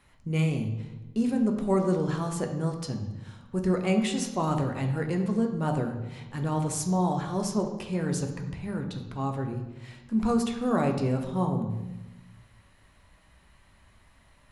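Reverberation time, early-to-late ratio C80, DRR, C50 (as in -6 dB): 1.1 s, 9.5 dB, 3.0 dB, 7.0 dB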